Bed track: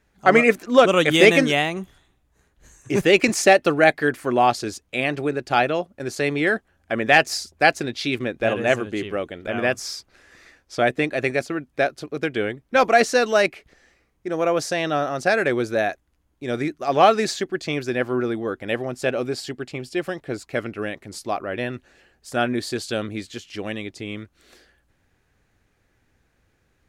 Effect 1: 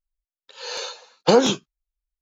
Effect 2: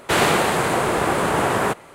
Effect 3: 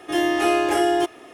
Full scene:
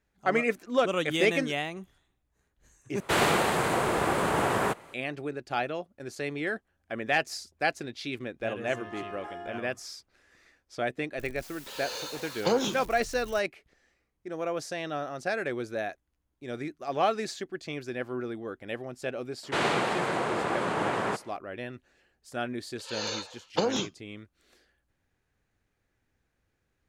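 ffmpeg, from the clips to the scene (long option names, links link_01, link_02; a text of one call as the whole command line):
ffmpeg -i bed.wav -i cue0.wav -i cue1.wav -i cue2.wav -filter_complex "[2:a]asplit=2[link_01][link_02];[1:a]asplit=2[link_03][link_04];[0:a]volume=-11dB[link_05];[link_01]equalizer=frequency=10000:width=1.5:gain=-2[link_06];[3:a]bandpass=frequency=1100:width_type=q:width=1.4:csg=0[link_07];[link_03]aeval=exprs='val(0)+0.5*0.0473*sgn(val(0))':channel_layout=same[link_08];[link_02]highpass=120,lowpass=5900[link_09];[link_04]acompressor=threshold=-31dB:ratio=2.5:attack=47:release=56:knee=1:detection=peak[link_10];[link_05]asplit=2[link_11][link_12];[link_11]atrim=end=3.004[link_13];[link_06]atrim=end=1.94,asetpts=PTS-STARTPTS,volume=-6.5dB[link_14];[link_12]atrim=start=4.936[link_15];[link_07]atrim=end=1.33,asetpts=PTS-STARTPTS,volume=-15.5dB,afade=type=in:duration=0.004:curve=hsin,afade=type=out:start_time=1.326:duration=0.004:curve=hsin,adelay=8530[link_16];[link_08]atrim=end=2.21,asetpts=PTS-STARTPTS,volume=-11dB,afade=type=in:duration=0.004:curve=hsin,afade=type=out:start_time=2.206:duration=0.004:curve=hsin,adelay=11180[link_17];[link_09]atrim=end=1.94,asetpts=PTS-STARTPTS,volume=-9dB,afade=type=in:duration=0.004:curve=hsin,afade=type=out:start_time=1.936:duration=0.004:curve=hsin,adelay=19430[link_18];[link_10]atrim=end=2.21,asetpts=PTS-STARTPTS,volume=-3dB,afade=type=in:duration=0.004:curve=hsin,afade=type=out:start_time=2.206:duration=0.004:curve=hsin,adelay=22300[link_19];[link_13][link_14]acrossfade=duration=0.004:curve1=hsin:curve2=hsin[link_20];[link_20][link_15]acrossfade=duration=0.004:curve1=hsin:curve2=hsin[link_21];[link_21][link_16][link_17][link_18][link_19]amix=inputs=5:normalize=0" out.wav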